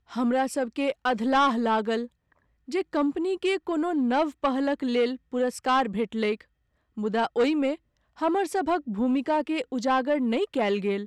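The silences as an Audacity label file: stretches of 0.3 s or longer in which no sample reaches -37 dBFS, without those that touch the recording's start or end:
2.060000	2.680000	silence
6.410000	6.970000	silence
7.750000	8.190000	silence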